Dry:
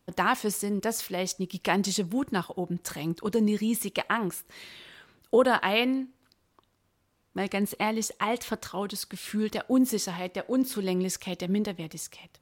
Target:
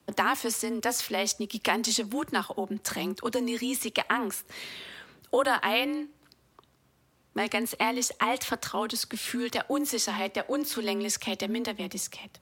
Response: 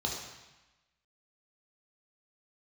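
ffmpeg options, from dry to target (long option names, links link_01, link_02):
-filter_complex "[0:a]afreqshift=36,acrossover=split=120|720|7600[link_01][link_02][link_03][link_04];[link_01]acompressor=threshold=-56dB:ratio=4[link_05];[link_02]acompressor=threshold=-38dB:ratio=4[link_06];[link_03]acompressor=threshold=-29dB:ratio=4[link_07];[link_04]acompressor=threshold=-41dB:ratio=4[link_08];[link_05][link_06][link_07][link_08]amix=inputs=4:normalize=0,volume=5.5dB"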